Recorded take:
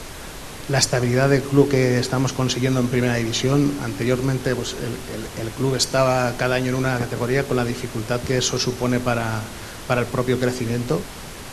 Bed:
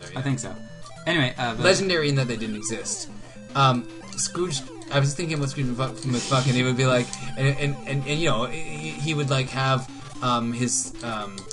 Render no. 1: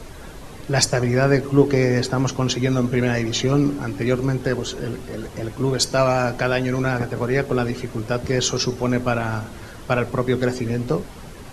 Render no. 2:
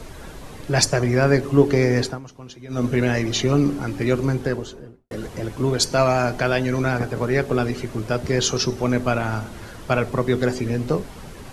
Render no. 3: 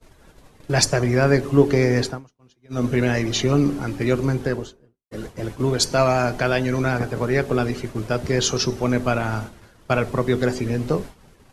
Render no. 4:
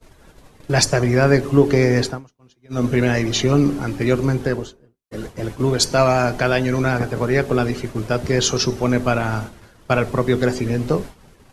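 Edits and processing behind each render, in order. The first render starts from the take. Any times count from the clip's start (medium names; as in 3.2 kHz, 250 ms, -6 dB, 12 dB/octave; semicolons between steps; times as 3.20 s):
noise reduction 9 dB, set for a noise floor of -35 dBFS
2.03–2.85 s: dip -18.5 dB, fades 0.17 s; 4.30–5.11 s: studio fade out
expander -27 dBFS
trim +2.5 dB; peak limiter -2 dBFS, peak gain reduction 2 dB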